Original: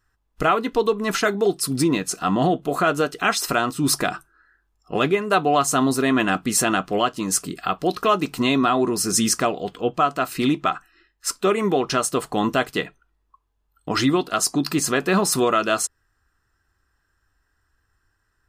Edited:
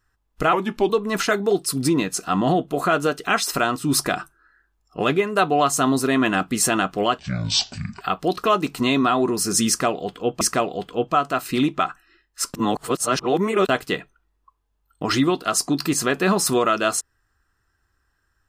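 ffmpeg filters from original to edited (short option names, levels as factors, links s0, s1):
-filter_complex "[0:a]asplit=8[s0][s1][s2][s3][s4][s5][s6][s7];[s0]atrim=end=0.534[s8];[s1]atrim=start=0.53:end=0.84,asetpts=PTS-STARTPTS,asetrate=37485,aresample=44100[s9];[s2]atrim=start=0.836:end=7.134[s10];[s3]atrim=start=7.13:end=7.6,asetpts=PTS-STARTPTS,asetrate=25137,aresample=44100,atrim=end_sample=36363,asetpts=PTS-STARTPTS[s11];[s4]atrim=start=7.596:end=10.002[s12];[s5]atrim=start=9.268:end=11.402[s13];[s6]atrim=start=11.398:end=12.552,asetpts=PTS-STARTPTS,areverse[s14];[s7]atrim=start=12.548[s15];[s8][s9]acrossfade=d=0.004:c1=hsin:c2=hsin[s16];[s16][s10]acrossfade=d=0.004:c1=hsin:c2=hsin[s17];[s17][s11]acrossfade=d=0.004:c1=hsin:c2=hsin[s18];[s18][s12]acrossfade=d=0.004:c1=hsin:c2=hsin[s19];[s19][s13]acrossfade=d=0.004:c1=hsin:c2=hsin[s20];[s20][s14]acrossfade=d=0.004:c1=hsin:c2=hsin[s21];[s21][s15]acrossfade=d=0.004:c1=hsin:c2=hsin"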